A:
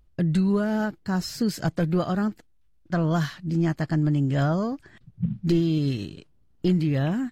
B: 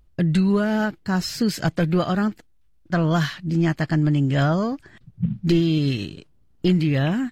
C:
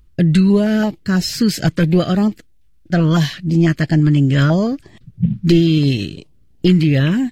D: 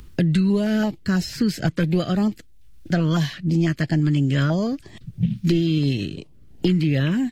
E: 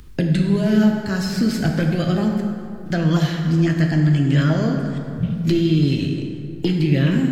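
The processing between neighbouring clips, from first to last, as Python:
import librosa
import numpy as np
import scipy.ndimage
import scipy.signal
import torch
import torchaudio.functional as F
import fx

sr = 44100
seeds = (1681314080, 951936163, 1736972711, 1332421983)

y1 = fx.dynamic_eq(x, sr, hz=2600.0, q=0.91, threshold_db=-47.0, ratio=4.0, max_db=6)
y1 = y1 * 10.0 ** (3.0 / 20.0)
y2 = fx.filter_held_notch(y1, sr, hz=6.0, low_hz=670.0, high_hz=1500.0)
y2 = y2 * 10.0 ** (7.0 / 20.0)
y3 = fx.band_squash(y2, sr, depth_pct=70)
y3 = y3 * 10.0 ** (-6.5 / 20.0)
y4 = fx.rev_plate(y3, sr, seeds[0], rt60_s=2.6, hf_ratio=0.5, predelay_ms=0, drr_db=1.5)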